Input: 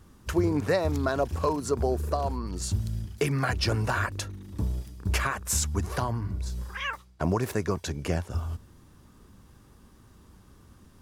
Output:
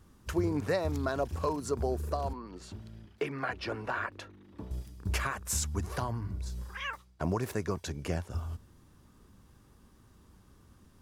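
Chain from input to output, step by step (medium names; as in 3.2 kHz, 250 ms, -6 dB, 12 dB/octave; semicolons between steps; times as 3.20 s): 2.33–4.71 s: three-band isolator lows -14 dB, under 230 Hz, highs -17 dB, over 3.6 kHz; trim -5 dB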